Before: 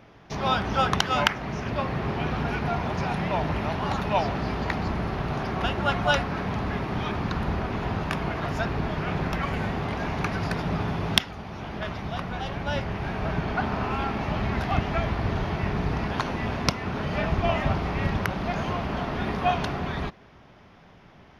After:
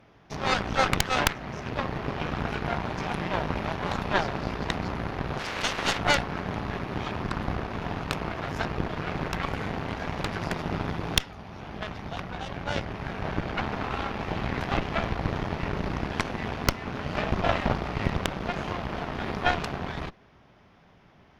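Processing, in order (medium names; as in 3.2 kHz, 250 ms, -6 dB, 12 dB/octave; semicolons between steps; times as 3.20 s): 5.38–5.97 s: spectral peaks clipped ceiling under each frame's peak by 20 dB; Chebyshev shaper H 6 -6 dB, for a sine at -3 dBFS; trim -5 dB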